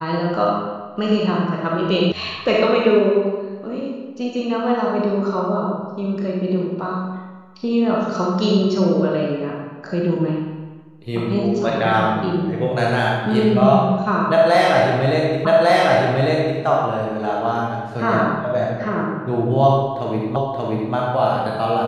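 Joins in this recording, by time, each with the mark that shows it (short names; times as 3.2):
2.12 sound cut off
15.45 repeat of the last 1.15 s
20.36 repeat of the last 0.58 s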